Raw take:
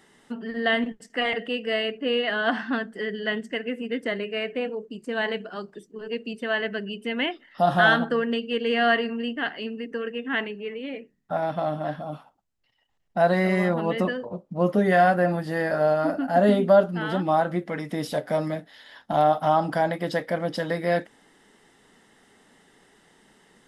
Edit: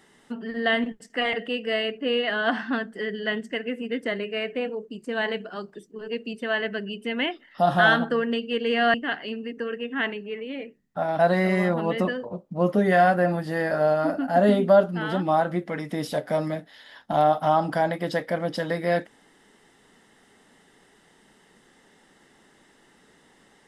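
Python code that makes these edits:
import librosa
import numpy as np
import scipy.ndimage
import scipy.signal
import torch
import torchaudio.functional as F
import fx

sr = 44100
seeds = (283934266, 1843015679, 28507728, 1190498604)

y = fx.edit(x, sr, fx.cut(start_s=8.94, length_s=0.34),
    fx.cut(start_s=11.53, length_s=1.66), tone=tone)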